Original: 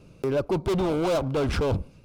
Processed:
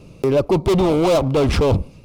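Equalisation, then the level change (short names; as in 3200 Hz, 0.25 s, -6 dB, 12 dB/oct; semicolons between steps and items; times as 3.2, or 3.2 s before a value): bell 1500 Hz -10 dB 0.23 oct; +8.5 dB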